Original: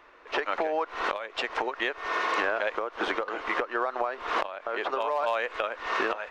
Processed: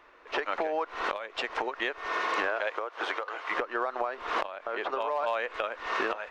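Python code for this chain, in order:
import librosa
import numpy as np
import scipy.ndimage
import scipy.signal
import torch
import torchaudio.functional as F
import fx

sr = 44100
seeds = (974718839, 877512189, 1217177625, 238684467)

y = fx.highpass(x, sr, hz=fx.line((2.47, 310.0), (3.5, 690.0)), slope=12, at=(2.47, 3.5), fade=0.02)
y = fx.high_shelf(y, sr, hz=7000.0, db=-7.0, at=(4.74, 5.54))
y = y * 10.0 ** (-2.0 / 20.0)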